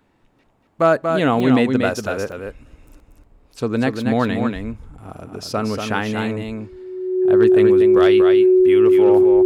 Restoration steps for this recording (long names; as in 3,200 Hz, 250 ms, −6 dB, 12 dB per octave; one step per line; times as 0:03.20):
clipped peaks rebuilt −5.5 dBFS
notch filter 370 Hz, Q 30
repair the gap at 0:01.40/0:02.32, 2.1 ms
echo removal 236 ms −5.5 dB